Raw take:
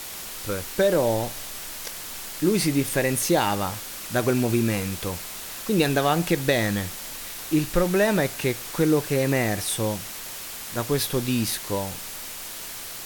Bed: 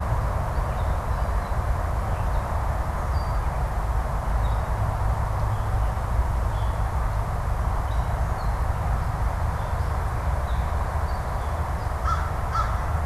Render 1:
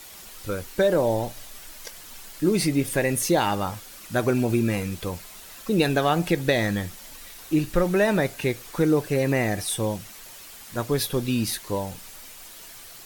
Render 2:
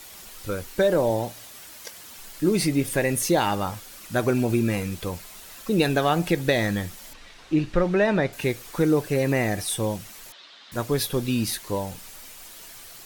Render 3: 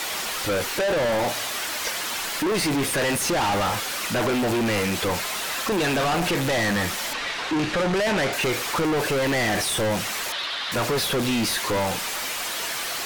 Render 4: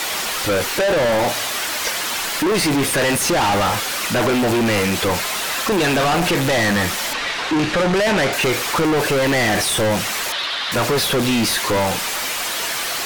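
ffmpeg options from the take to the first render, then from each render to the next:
ffmpeg -i in.wav -af "afftdn=noise_reduction=9:noise_floor=-36" out.wav
ffmpeg -i in.wav -filter_complex "[0:a]asettb=1/sr,asplit=3[link_01][link_02][link_03];[link_01]atrim=end=1.104[link_04];[link_02]atrim=start=1.1:end=2.19,asetpts=PTS-STARTPTS,afade=type=in:duration=0.004:curve=qsin,afade=type=out:start_time=1.086:duration=0.004:curve=qsin,highpass=72[link_05];[link_03]atrim=start=2.186[link_06];[link_04][link_05]acrossfade=duration=0.004:curve1=hsin:curve2=qsin[link_07];[link_07][link_06]acrossfade=duration=0.004:curve1=qsin:curve2=hsin,asettb=1/sr,asplit=3[link_08][link_09][link_10];[link_08]atrim=end=7.134[link_11];[link_09]atrim=start=7.13:end=8.33,asetpts=PTS-STARTPTS,afade=type=in:duration=0.004:curve=qsin,afade=type=out:start_time=1.196:duration=0.004:curve=qsin,lowpass=4200[link_12];[link_10]atrim=start=8.326[link_13];[link_11][link_12]acrossfade=duration=0.004:curve1=hsin:curve2=qsin[link_14];[link_14][link_13]acrossfade=duration=0.004:curve1=qsin:curve2=hsin,asettb=1/sr,asplit=3[link_15][link_16][link_17];[link_15]atrim=end=10.324[link_18];[link_16]atrim=start=10.32:end=10.72,asetpts=PTS-STARTPTS,afade=type=in:duration=0.004:curve=qsin,afade=type=out:start_time=0.396:duration=0.004:curve=qsin,highpass=370,equalizer=frequency=450:width_type=q:width=4:gain=-7,equalizer=frequency=810:width_type=q:width=4:gain=-5,equalizer=frequency=2400:width_type=q:width=4:gain=-4,equalizer=frequency=3700:width_type=q:width=4:gain=8,lowpass=frequency=4400:width=0.5412,lowpass=frequency=4400:width=1.3066[link_19];[link_17]atrim=start=10.716[link_20];[link_18][link_19]acrossfade=duration=0.004:curve1=hsin:curve2=qsin[link_21];[link_21][link_20]acrossfade=duration=0.004:curve1=qsin:curve2=hsin" out.wav
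ffmpeg -i in.wav -filter_complex "[0:a]asplit=2[link_01][link_02];[link_02]highpass=frequency=720:poles=1,volume=31dB,asoftclip=type=tanh:threshold=-7.5dB[link_03];[link_01][link_03]amix=inputs=2:normalize=0,lowpass=frequency=2700:poles=1,volume=-6dB,asoftclip=type=tanh:threshold=-21dB" out.wav
ffmpeg -i in.wav -af "volume=5.5dB" out.wav

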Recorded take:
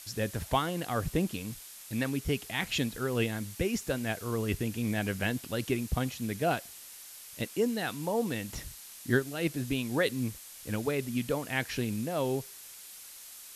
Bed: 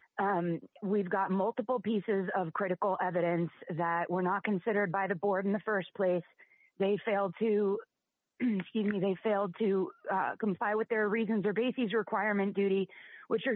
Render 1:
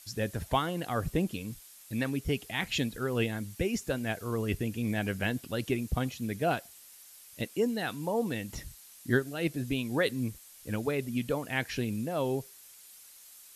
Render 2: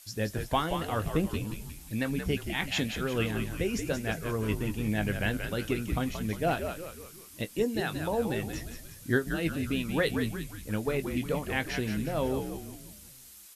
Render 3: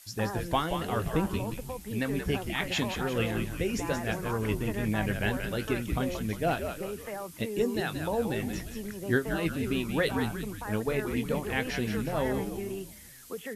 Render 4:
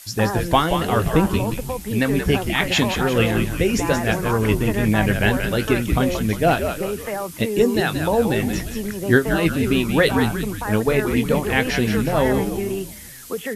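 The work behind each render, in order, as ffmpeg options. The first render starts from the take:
ffmpeg -i in.wav -af "afftdn=noise_reduction=7:noise_floor=-48" out.wav
ffmpeg -i in.wav -filter_complex "[0:a]asplit=2[link_01][link_02];[link_02]adelay=19,volume=-11dB[link_03];[link_01][link_03]amix=inputs=2:normalize=0,asplit=7[link_04][link_05][link_06][link_07][link_08][link_09][link_10];[link_05]adelay=177,afreqshift=-77,volume=-7dB[link_11];[link_06]adelay=354,afreqshift=-154,volume=-13.4dB[link_12];[link_07]adelay=531,afreqshift=-231,volume=-19.8dB[link_13];[link_08]adelay=708,afreqshift=-308,volume=-26.1dB[link_14];[link_09]adelay=885,afreqshift=-385,volume=-32.5dB[link_15];[link_10]adelay=1062,afreqshift=-462,volume=-38.9dB[link_16];[link_04][link_11][link_12][link_13][link_14][link_15][link_16]amix=inputs=7:normalize=0" out.wav
ffmpeg -i in.wav -i bed.wav -filter_complex "[1:a]volume=-7.5dB[link_01];[0:a][link_01]amix=inputs=2:normalize=0" out.wav
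ffmpeg -i in.wav -af "volume=11dB" out.wav

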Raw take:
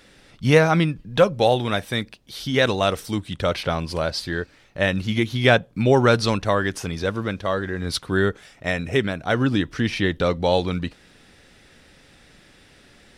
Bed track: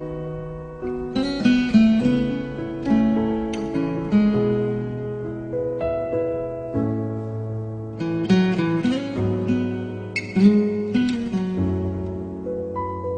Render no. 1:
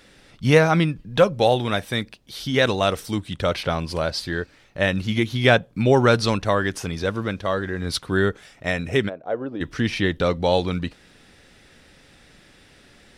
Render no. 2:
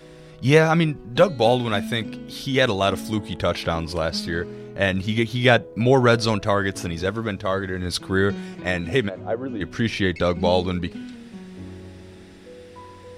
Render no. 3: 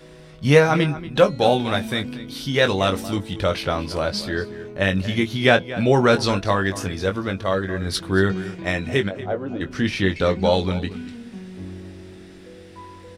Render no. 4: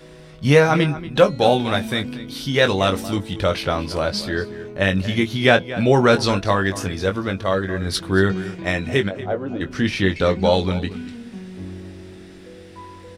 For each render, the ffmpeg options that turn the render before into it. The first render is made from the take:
ffmpeg -i in.wav -filter_complex "[0:a]asplit=3[link_01][link_02][link_03];[link_01]afade=type=out:start_time=9.08:duration=0.02[link_04];[link_02]bandpass=frequency=530:width_type=q:width=2.1,afade=type=in:start_time=9.08:duration=0.02,afade=type=out:start_time=9.6:duration=0.02[link_05];[link_03]afade=type=in:start_time=9.6:duration=0.02[link_06];[link_04][link_05][link_06]amix=inputs=3:normalize=0" out.wav
ffmpeg -i in.wav -i bed.wav -filter_complex "[1:a]volume=-15.5dB[link_01];[0:a][link_01]amix=inputs=2:normalize=0" out.wav
ffmpeg -i in.wav -filter_complex "[0:a]asplit=2[link_01][link_02];[link_02]adelay=21,volume=-7.5dB[link_03];[link_01][link_03]amix=inputs=2:normalize=0,asplit=2[link_04][link_05];[link_05]adelay=233.2,volume=-15dB,highshelf=frequency=4000:gain=-5.25[link_06];[link_04][link_06]amix=inputs=2:normalize=0" out.wav
ffmpeg -i in.wav -af "volume=1.5dB,alimiter=limit=-2dB:level=0:latency=1" out.wav

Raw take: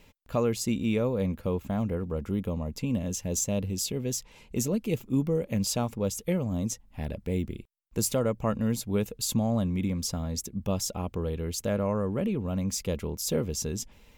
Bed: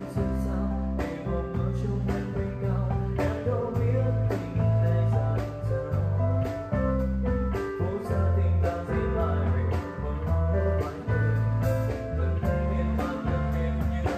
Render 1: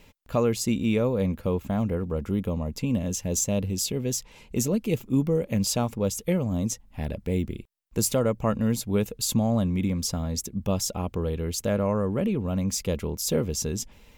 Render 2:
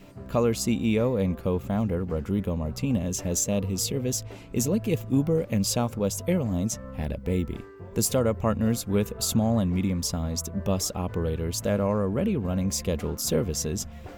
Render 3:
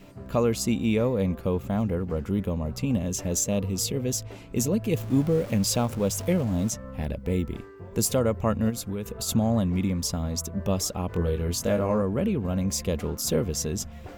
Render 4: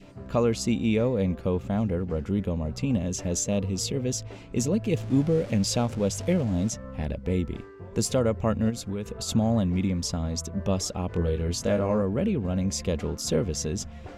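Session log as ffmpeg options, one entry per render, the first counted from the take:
ffmpeg -i in.wav -af "volume=3dB" out.wav
ffmpeg -i in.wav -i bed.wav -filter_complex "[1:a]volume=-14.5dB[link_01];[0:a][link_01]amix=inputs=2:normalize=0" out.wav
ffmpeg -i in.wav -filter_complex "[0:a]asettb=1/sr,asplit=3[link_01][link_02][link_03];[link_01]atrim=end=4.964[link_04];[link_02]atrim=start=4.96:end=6.7,asetpts=PTS-STARTPTS,afade=type=in:duration=0.004:curve=qsin,afade=type=out:start_time=1.736:duration=0.004:curve=qsin,aeval=exprs='val(0)+0.5*0.015*sgn(val(0))':channel_layout=same[link_05];[link_03]atrim=start=6.696[link_06];[link_04][link_05]acrossfade=duration=0.004:curve1=hsin:curve2=qsin[link_07];[link_07][link_06]acrossfade=duration=0.004:curve1=qsin:curve2=hsin,asplit=3[link_08][link_09][link_10];[link_08]afade=type=out:start_time=8.69:duration=0.02[link_11];[link_09]acompressor=threshold=-27dB:ratio=6:attack=3.2:release=140:knee=1:detection=peak,afade=type=in:start_time=8.69:duration=0.02,afade=type=out:start_time=9.27:duration=0.02[link_12];[link_10]afade=type=in:start_time=9.27:duration=0.02[link_13];[link_11][link_12][link_13]amix=inputs=3:normalize=0,asettb=1/sr,asplit=3[link_14][link_15][link_16];[link_14]atrim=end=11.074[link_17];[link_15]atrim=start=11.07:end=12.02,asetpts=PTS-STARTPTS,afade=type=in:duration=0.004:curve=qsin,afade=type=out:start_time=0.946:duration=0.004:curve=qsin,asplit=2[link_18][link_19];[link_19]adelay=23,volume=-5dB[link_20];[link_18][link_20]amix=inputs=2:normalize=0,atrim=end_sample=41895[link_21];[link_16]atrim=start=12.016[link_22];[link_17][link_21]acrossfade=duration=0.004:curve1=hsin:curve2=qsin[link_23];[link_23][link_22]acrossfade=duration=0.004:curve1=qsin:curve2=hsin" out.wav
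ffmpeg -i in.wav -af "lowpass=7400,adynamicequalizer=threshold=0.00398:dfrequency=1100:dqfactor=2.3:tfrequency=1100:tqfactor=2.3:attack=5:release=100:ratio=0.375:range=2.5:mode=cutabove:tftype=bell" out.wav

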